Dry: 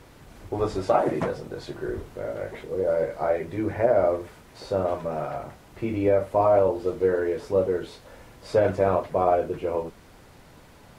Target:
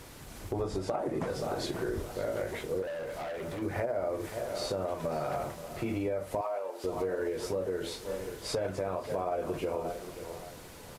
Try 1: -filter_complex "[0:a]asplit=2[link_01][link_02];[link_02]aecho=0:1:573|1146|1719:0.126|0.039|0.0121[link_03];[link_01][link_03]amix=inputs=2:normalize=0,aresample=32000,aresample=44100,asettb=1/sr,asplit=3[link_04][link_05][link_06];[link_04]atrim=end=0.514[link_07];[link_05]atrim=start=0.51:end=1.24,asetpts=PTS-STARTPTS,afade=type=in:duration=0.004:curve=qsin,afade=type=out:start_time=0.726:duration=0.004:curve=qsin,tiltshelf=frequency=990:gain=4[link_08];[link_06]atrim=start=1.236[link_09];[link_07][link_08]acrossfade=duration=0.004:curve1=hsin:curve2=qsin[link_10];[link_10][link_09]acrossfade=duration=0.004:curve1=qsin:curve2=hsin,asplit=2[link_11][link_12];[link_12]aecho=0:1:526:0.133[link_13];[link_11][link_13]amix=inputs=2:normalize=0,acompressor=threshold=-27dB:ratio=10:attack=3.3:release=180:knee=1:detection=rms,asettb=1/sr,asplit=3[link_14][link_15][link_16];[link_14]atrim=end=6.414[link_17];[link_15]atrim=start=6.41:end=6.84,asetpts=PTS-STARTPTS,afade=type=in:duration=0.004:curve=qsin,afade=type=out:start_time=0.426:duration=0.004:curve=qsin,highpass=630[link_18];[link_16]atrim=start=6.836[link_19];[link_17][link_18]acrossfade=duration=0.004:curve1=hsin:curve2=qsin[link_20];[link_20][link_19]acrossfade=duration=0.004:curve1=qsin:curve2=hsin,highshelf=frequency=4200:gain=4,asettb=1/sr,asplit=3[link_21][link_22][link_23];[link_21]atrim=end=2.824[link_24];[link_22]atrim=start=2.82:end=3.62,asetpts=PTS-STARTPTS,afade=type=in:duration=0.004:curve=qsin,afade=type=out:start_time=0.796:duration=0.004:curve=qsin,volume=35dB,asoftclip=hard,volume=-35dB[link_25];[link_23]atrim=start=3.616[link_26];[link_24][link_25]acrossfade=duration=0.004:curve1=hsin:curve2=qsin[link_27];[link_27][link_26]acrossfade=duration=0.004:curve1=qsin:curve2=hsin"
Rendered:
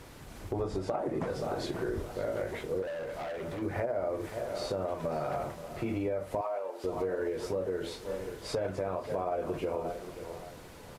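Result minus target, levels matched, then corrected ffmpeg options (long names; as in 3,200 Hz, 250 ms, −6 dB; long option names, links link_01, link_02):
8,000 Hz band −5.0 dB
-filter_complex "[0:a]asplit=2[link_01][link_02];[link_02]aecho=0:1:573|1146|1719:0.126|0.039|0.0121[link_03];[link_01][link_03]amix=inputs=2:normalize=0,aresample=32000,aresample=44100,asettb=1/sr,asplit=3[link_04][link_05][link_06];[link_04]atrim=end=0.514[link_07];[link_05]atrim=start=0.51:end=1.24,asetpts=PTS-STARTPTS,afade=type=in:duration=0.004:curve=qsin,afade=type=out:start_time=0.726:duration=0.004:curve=qsin,tiltshelf=frequency=990:gain=4[link_08];[link_06]atrim=start=1.236[link_09];[link_07][link_08]acrossfade=duration=0.004:curve1=hsin:curve2=qsin[link_10];[link_10][link_09]acrossfade=duration=0.004:curve1=qsin:curve2=hsin,asplit=2[link_11][link_12];[link_12]aecho=0:1:526:0.133[link_13];[link_11][link_13]amix=inputs=2:normalize=0,acompressor=threshold=-27dB:ratio=10:attack=3.3:release=180:knee=1:detection=rms,asettb=1/sr,asplit=3[link_14][link_15][link_16];[link_14]atrim=end=6.414[link_17];[link_15]atrim=start=6.41:end=6.84,asetpts=PTS-STARTPTS,afade=type=in:duration=0.004:curve=qsin,afade=type=out:start_time=0.426:duration=0.004:curve=qsin,highpass=630[link_18];[link_16]atrim=start=6.836[link_19];[link_17][link_18]acrossfade=duration=0.004:curve1=hsin:curve2=qsin[link_20];[link_20][link_19]acrossfade=duration=0.004:curve1=qsin:curve2=hsin,highshelf=frequency=4200:gain=10.5,asettb=1/sr,asplit=3[link_21][link_22][link_23];[link_21]atrim=end=2.824[link_24];[link_22]atrim=start=2.82:end=3.62,asetpts=PTS-STARTPTS,afade=type=in:duration=0.004:curve=qsin,afade=type=out:start_time=0.796:duration=0.004:curve=qsin,volume=35dB,asoftclip=hard,volume=-35dB[link_25];[link_23]atrim=start=3.616[link_26];[link_24][link_25]acrossfade=duration=0.004:curve1=hsin:curve2=qsin[link_27];[link_27][link_26]acrossfade=duration=0.004:curve1=qsin:curve2=hsin"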